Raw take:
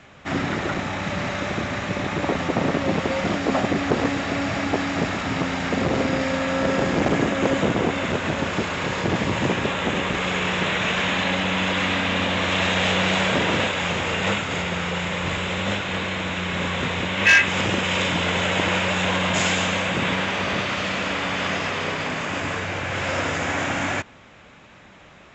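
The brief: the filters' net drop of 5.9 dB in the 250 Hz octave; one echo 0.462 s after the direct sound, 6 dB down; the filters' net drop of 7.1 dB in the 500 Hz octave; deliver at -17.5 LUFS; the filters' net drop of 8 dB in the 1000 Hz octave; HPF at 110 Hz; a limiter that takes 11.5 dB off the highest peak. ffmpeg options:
-af "highpass=110,equalizer=f=250:t=o:g=-6,equalizer=f=500:t=o:g=-4.5,equalizer=f=1k:t=o:g=-9,alimiter=limit=-19dB:level=0:latency=1,aecho=1:1:462:0.501,volume=9.5dB"

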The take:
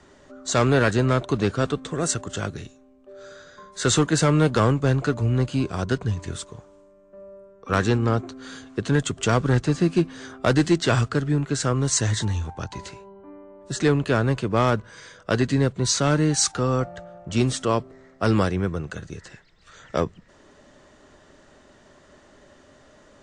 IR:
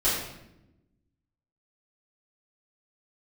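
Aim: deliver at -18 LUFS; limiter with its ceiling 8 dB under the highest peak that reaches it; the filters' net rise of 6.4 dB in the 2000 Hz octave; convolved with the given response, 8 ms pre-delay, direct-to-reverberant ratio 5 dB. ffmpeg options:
-filter_complex "[0:a]equalizer=f=2k:t=o:g=9,alimiter=limit=-11.5dB:level=0:latency=1,asplit=2[a][b];[1:a]atrim=start_sample=2205,adelay=8[c];[b][c]afir=irnorm=-1:irlink=0,volume=-17.5dB[d];[a][d]amix=inputs=2:normalize=0,volume=4.5dB"

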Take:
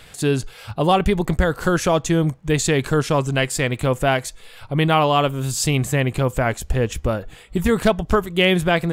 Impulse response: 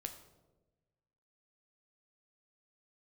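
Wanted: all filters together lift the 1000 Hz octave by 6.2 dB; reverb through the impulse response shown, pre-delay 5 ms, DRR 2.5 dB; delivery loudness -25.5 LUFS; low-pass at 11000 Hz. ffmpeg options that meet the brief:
-filter_complex "[0:a]lowpass=11k,equalizer=f=1k:t=o:g=8.5,asplit=2[a][b];[1:a]atrim=start_sample=2205,adelay=5[c];[b][c]afir=irnorm=-1:irlink=0,volume=0dB[d];[a][d]amix=inputs=2:normalize=0,volume=-9.5dB"

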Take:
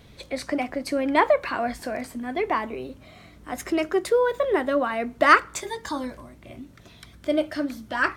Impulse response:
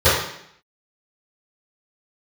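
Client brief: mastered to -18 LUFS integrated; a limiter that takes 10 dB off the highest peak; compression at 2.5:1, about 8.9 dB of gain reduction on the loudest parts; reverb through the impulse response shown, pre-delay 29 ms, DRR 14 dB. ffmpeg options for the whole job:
-filter_complex "[0:a]acompressor=threshold=-23dB:ratio=2.5,alimiter=limit=-20dB:level=0:latency=1,asplit=2[a][b];[1:a]atrim=start_sample=2205,adelay=29[c];[b][c]afir=irnorm=-1:irlink=0,volume=-39dB[d];[a][d]amix=inputs=2:normalize=0,volume=12.5dB"

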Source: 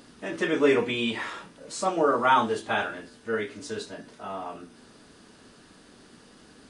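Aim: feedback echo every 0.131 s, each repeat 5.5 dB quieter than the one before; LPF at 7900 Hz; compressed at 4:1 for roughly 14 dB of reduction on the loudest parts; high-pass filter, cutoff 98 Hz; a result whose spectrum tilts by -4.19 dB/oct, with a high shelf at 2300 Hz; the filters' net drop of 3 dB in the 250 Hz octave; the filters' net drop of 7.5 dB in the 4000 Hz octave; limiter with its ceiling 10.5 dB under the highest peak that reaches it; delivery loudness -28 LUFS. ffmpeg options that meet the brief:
-af "highpass=98,lowpass=7.9k,equalizer=f=250:t=o:g=-3.5,highshelf=f=2.3k:g=-6.5,equalizer=f=4k:t=o:g=-4,acompressor=threshold=-35dB:ratio=4,alimiter=level_in=9.5dB:limit=-24dB:level=0:latency=1,volume=-9.5dB,aecho=1:1:131|262|393|524|655|786|917:0.531|0.281|0.149|0.079|0.0419|0.0222|0.0118,volume=13.5dB"

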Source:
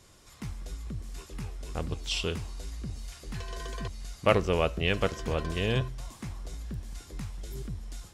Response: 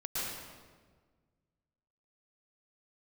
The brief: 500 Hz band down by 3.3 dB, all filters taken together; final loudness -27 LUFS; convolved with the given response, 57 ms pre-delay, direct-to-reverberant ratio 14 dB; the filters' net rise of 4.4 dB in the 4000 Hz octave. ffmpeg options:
-filter_complex "[0:a]equalizer=f=500:t=o:g=-4,equalizer=f=4k:t=o:g=6.5,asplit=2[a][b];[1:a]atrim=start_sample=2205,adelay=57[c];[b][c]afir=irnorm=-1:irlink=0,volume=-18.5dB[d];[a][d]amix=inputs=2:normalize=0,volume=5.5dB"

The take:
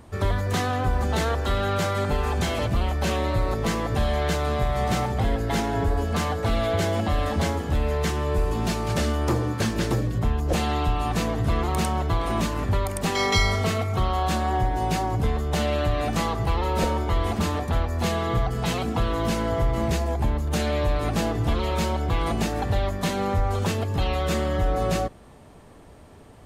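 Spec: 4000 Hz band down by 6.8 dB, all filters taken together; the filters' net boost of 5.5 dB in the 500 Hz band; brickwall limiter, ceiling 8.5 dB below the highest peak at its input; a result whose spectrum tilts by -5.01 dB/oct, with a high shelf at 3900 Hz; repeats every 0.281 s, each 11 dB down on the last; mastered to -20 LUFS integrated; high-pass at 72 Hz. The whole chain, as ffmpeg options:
-af "highpass=72,equalizer=f=500:t=o:g=7,highshelf=f=3.9k:g=-3.5,equalizer=f=4k:t=o:g=-7,alimiter=limit=-16.5dB:level=0:latency=1,aecho=1:1:281|562|843:0.282|0.0789|0.0221,volume=5.5dB"

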